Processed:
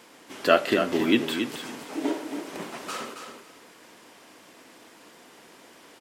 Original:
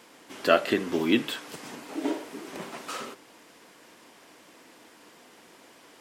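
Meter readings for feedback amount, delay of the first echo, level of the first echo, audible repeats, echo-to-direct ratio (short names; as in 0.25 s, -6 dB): 17%, 0.274 s, -7.5 dB, 2, -7.5 dB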